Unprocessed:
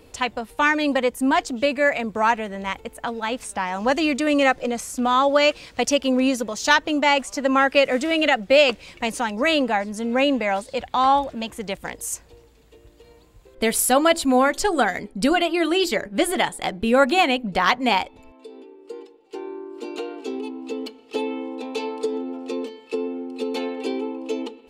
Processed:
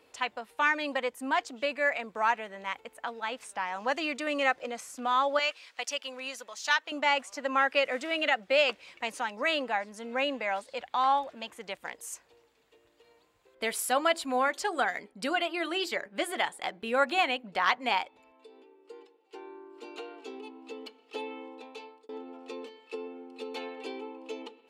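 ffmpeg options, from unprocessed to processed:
-filter_complex "[0:a]asettb=1/sr,asplit=3[a][b][c];[a]atrim=end=5.394[d];[b]atrim=start=5.39:end=6.92,asetpts=PTS-STARTPTS,afade=t=in:d=0.004:c=qsin,afade=t=out:st=1.526:d=0.004:c=qsin,highpass=f=1.3k:p=1[e];[c]atrim=start=6.916[f];[d][e]acrossfade=d=0.004:c1=hsin:c2=qsin[g];[g][f]acrossfade=d=0.004:c1=qsin:c2=hsin,asplit=2[h][i];[h]atrim=end=22.09,asetpts=PTS-STARTPTS,afade=t=out:st=21.45:d=0.64[j];[i]atrim=start=22.09,asetpts=PTS-STARTPTS,afade=t=in:d=0.004:c=hsin[k];[j][k]concat=n=2:v=0:a=1,highpass=f=1.4k:p=1,highshelf=f=3.4k:g=-12,volume=-1.5dB"

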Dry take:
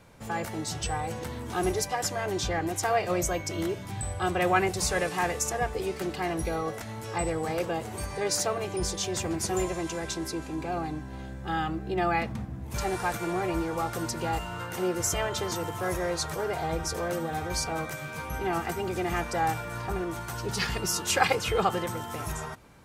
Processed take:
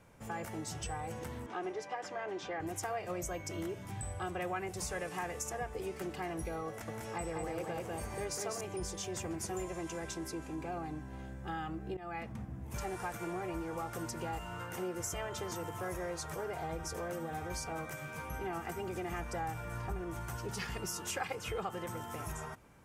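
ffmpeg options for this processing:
-filter_complex "[0:a]asettb=1/sr,asplit=3[a][b][c];[a]atrim=end=1.464[d];[b]atrim=start=1.46:end=2.6,asetpts=PTS-STARTPTS,afade=t=in:d=0.004:c=qsin,afade=t=out:st=1.136:d=0.004:c=qsin,highpass=290,lowpass=3.5k[e];[c]atrim=start=2.596[f];[d][e]acrossfade=d=0.004:c1=hsin:c2=qsin[g];[g][f]acrossfade=d=0.004:c1=qsin:c2=hsin,asettb=1/sr,asplit=3[h][i][j];[h]atrim=end=6.684[k];[i]atrim=start=6.68:end=8.61,asetpts=PTS-STARTPTS,afade=t=in:d=0.004:c=qsin,afade=t=out:st=1.926:d=0.004:c=qsin,aecho=1:1:198:0.708,atrim=end_sample=85113[l];[j]atrim=start=8.606[m];[k][l]acrossfade=d=0.004:c1=hsin:c2=qsin[n];[n][m]acrossfade=d=0.004:c1=qsin:c2=hsin,asettb=1/sr,asplit=3[o][p][q];[o]atrim=end=19.194[r];[p]atrim=start=19.19:end=20.37,asetpts=PTS-STARTPTS,afade=t=in:d=0.004:c=qsin,afade=t=out:st=1.176:d=0.004:c=qsin,lowshelf=f=84:g=11.5[s];[q]atrim=start=20.366[t];[r][s]acrossfade=d=0.004:c1=hsin:c2=qsin[u];[u][t]acrossfade=d=0.004:c1=qsin:c2=hsin,asplit=2[v][w];[v]atrim=end=11.97,asetpts=PTS-STARTPTS,afade=t=out:st=11.966:d=0.004:c=hsin:silence=0.11885[x];[w]atrim=start=11.97,asetpts=PTS-STARTPTS,afade=t=in:d=0.53:silence=0.11885[y];[x][y]concat=n=2:v=0:a=1,acompressor=threshold=-30dB:ratio=3,equalizer=f=4.1k:t=o:w=0.53:g=-7,volume=-6dB"

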